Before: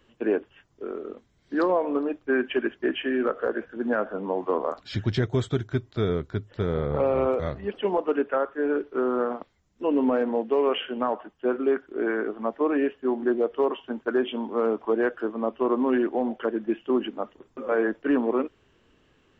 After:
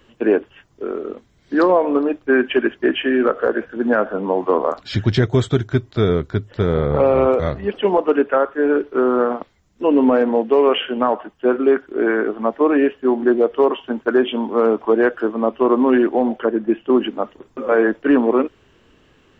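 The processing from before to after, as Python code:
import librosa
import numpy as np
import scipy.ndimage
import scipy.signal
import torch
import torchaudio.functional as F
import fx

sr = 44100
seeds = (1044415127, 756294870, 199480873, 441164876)

y = fx.high_shelf(x, sr, hz=2400.0, db=-8.0, at=(16.4, 16.9))
y = y * librosa.db_to_amplitude(8.5)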